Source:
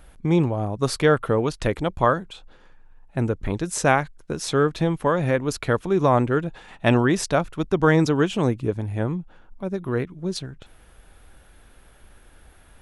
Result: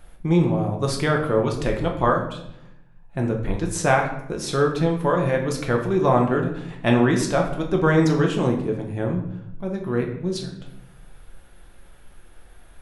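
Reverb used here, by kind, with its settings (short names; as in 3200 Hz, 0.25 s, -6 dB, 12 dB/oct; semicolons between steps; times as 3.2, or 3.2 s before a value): shoebox room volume 190 m³, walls mixed, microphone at 0.88 m; gain -2.5 dB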